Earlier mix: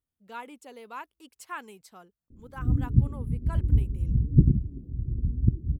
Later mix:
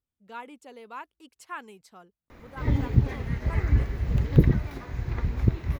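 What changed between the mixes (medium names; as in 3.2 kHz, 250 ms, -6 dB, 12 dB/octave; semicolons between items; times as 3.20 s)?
background: remove inverse Chebyshev low-pass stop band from 1 kHz, stop band 60 dB; master: add treble shelf 9 kHz -9.5 dB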